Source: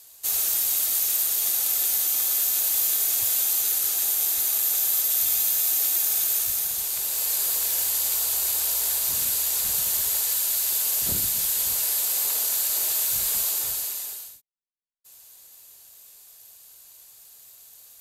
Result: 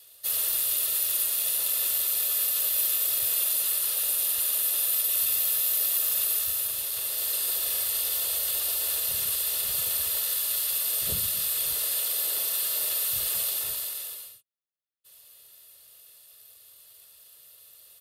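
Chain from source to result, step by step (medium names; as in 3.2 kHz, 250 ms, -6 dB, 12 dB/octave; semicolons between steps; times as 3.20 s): static phaser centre 1.6 kHz, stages 8; harmony voices -5 st -3 dB; comb of notches 770 Hz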